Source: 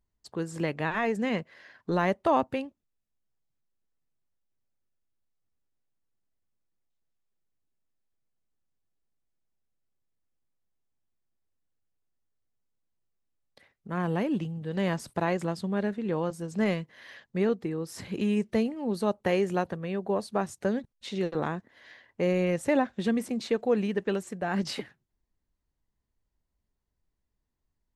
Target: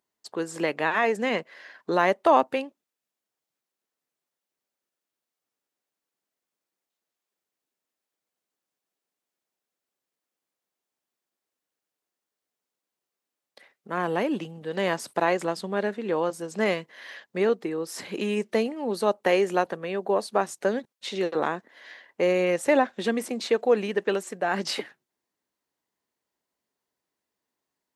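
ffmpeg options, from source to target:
ffmpeg -i in.wav -af "highpass=350,volume=6dB" out.wav

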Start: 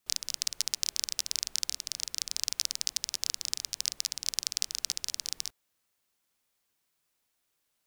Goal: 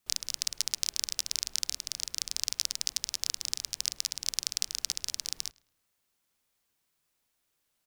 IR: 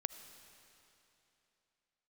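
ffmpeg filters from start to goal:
-filter_complex "[0:a]lowshelf=frequency=170:gain=4,asplit=2[link_01][link_02];[link_02]adelay=106,lowpass=frequency=2100:poles=1,volume=-20.5dB,asplit=2[link_03][link_04];[link_04]adelay=106,lowpass=frequency=2100:poles=1,volume=0.44,asplit=2[link_05][link_06];[link_06]adelay=106,lowpass=frequency=2100:poles=1,volume=0.44[link_07];[link_03][link_05][link_07]amix=inputs=3:normalize=0[link_08];[link_01][link_08]amix=inputs=2:normalize=0"

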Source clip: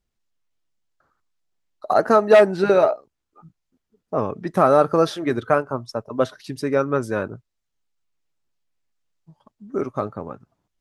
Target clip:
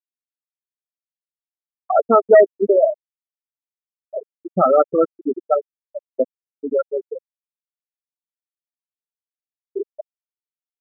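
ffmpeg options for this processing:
ffmpeg -i in.wav -af "afftfilt=real='re*gte(hypot(re,im),0.631)':imag='im*gte(hypot(re,im),0.631)':win_size=1024:overlap=0.75,highshelf=frequency=3100:width_type=q:width=3:gain=-8.5,volume=2dB" out.wav

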